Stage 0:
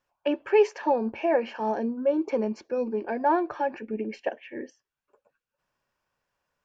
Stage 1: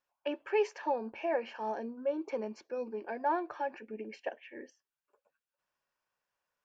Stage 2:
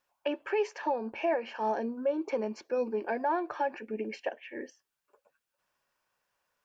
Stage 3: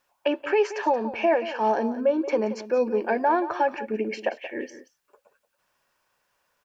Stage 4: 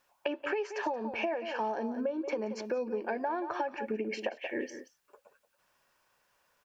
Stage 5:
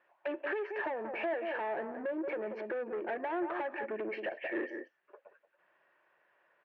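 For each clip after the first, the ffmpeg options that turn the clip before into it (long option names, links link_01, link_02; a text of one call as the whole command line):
ffmpeg -i in.wav -af "lowshelf=frequency=310:gain=-10.5,volume=-6dB" out.wav
ffmpeg -i in.wav -af "alimiter=level_in=3.5dB:limit=-24dB:level=0:latency=1:release=355,volume=-3.5dB,volume=7dB" out.wav
ffmpeg -i in.wav -af "aecho=1:1:178:0.211,volume=7.5dB" out.wav
ffmpeg -i in.wav -af "acompressor=threshold=-30dB:ratio=10" out.wav
ffmpeg -i in.wav -af "aeval=exprs='(tanh(56.2*val(0)+0.2)-tanh(0.2))/56.2':channel_layout=same,highpass=200,equalizer=frequency=240:width_type=q:width=4:gain=-6,equalizer=frequency=350:width_type=q:width=4:gain=8,equalizer=frequency=630:width_type=q:width=4:gain=6,equalizer=frequency=1800:width_type=q:width=4:gain=8,lowpass=frequency=2700:width=0.5412,lowpass=frequency=2700:width=1.3066" out.wav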